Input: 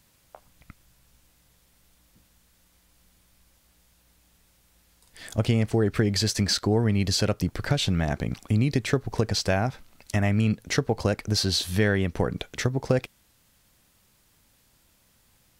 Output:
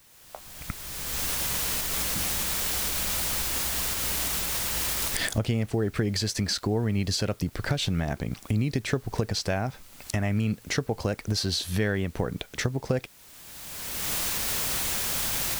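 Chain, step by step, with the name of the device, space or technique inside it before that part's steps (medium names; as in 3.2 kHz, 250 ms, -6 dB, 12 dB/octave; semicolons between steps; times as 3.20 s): cheap recorder with automatic gain (white noise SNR 27 dB; recorder AGC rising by 26 dB/s); trim -4 dB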